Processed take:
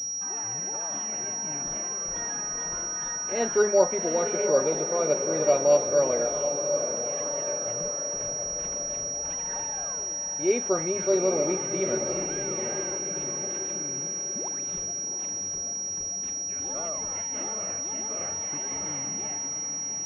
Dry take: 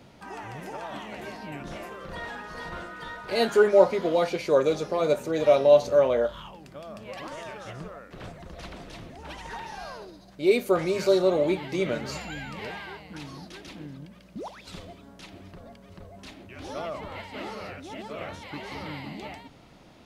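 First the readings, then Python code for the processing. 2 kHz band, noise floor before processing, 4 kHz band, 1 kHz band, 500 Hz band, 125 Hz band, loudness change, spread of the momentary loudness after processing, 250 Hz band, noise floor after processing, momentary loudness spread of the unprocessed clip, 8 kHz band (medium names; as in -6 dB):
-3.5 dB, -52 dBFS, +10.0 dB, -2.0 dB, -2.0 dB, -3.0 dB, -1.0 dB, 6 LU, -2.0 dB, -32 dBFS, 22 LU, +25.0 dB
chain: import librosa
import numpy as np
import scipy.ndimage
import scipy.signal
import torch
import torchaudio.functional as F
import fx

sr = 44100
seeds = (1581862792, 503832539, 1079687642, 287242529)

y = fx.peak_eq(x, sr, hz=60.0, db=-5.0, octaves=1.4)
y = fx.echo_diffused(y, sr, ms=773, feedback_pct=56, wet_db=-7)
y = fx.pwm(y, sr, carrier_hz=5700.0)
y = F.gain(torch.from_numpy(y), -3.0).numpy()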